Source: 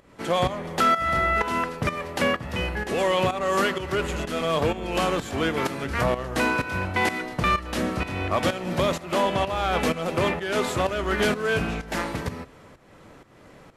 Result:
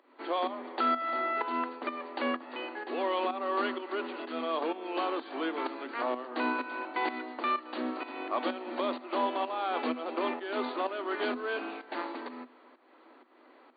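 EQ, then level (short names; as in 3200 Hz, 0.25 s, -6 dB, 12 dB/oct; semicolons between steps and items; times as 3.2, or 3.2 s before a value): rippled Chebyshev high-pass 240 Hz, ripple 6 dB; dynamic EQ 1900 Hz, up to -3 dB, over -40 dBFS, Q 1.3; brick-wall FIR low-pass 4700 Hz; -4.0 dB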